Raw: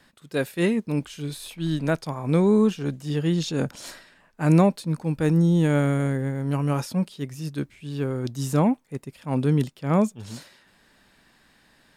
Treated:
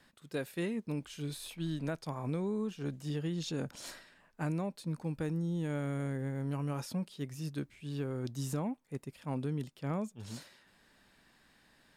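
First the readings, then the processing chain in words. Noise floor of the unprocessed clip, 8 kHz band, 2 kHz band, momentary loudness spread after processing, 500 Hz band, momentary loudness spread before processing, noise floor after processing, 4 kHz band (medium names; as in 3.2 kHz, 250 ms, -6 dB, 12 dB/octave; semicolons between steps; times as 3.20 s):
-60 dBFS, -9.0 dB, -12.5 dB, 7 LU, -14.0 dB, 14 LU, -67 dBFS, -9.5 dB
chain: compression 6:1, threshold -26 dBFS, peak gain reduction 13 dB; trim -6.5 dB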